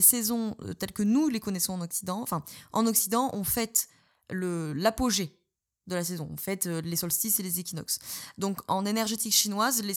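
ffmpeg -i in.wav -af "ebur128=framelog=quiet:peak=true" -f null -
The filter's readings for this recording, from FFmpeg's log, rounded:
Integrated loudness:
  I:         -28.0 LUFS
  Threshold: -38.2 LUFS
Loudness range:
  LRA:         3.0 LU
  Threshold: -48.8 LUFS
  LRA low:   -30.5 LUFS
  LRA high:  -27.5 LUFS
True peak:
  Peak:       -5.9 dBFS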